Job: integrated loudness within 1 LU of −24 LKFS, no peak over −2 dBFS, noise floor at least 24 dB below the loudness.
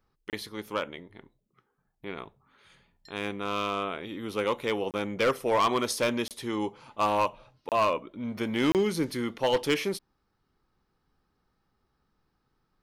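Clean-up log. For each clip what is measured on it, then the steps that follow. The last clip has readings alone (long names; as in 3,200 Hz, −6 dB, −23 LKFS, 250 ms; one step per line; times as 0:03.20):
share of clipped samples 0.5%; peaks flattened at −18.5 dBFS; number of dropouts 5; longest dropout 28 ms; integrated loudness −29.5 LKFS; sample peak −18.5 dBFS; target loudness −24.0 LKFS
→ clipped peaks rebuilt −18.5 dBFS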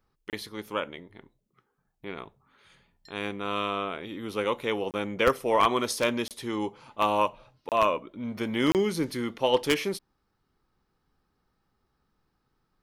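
share of clipped samples 0.0%; number of dropouts 5; longest dropout 28 ms
→ repair the gap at 0:00.30/0:04.91/0:06.28/0:07.69/0:08.72, 28 ms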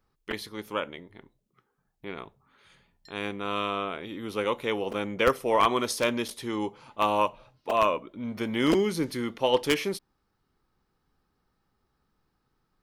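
number of dropouts 0; integrated loudness −28.0 LKFS; sample peak −9.5 dBFS; target loudness −24.0 LKFS
→ level +4 dB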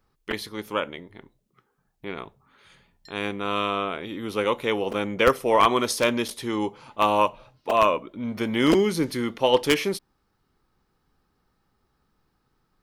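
integrated loudness −24.0 LKFS; sample peak −5.5 dBFS; background noise floor −72 dBFS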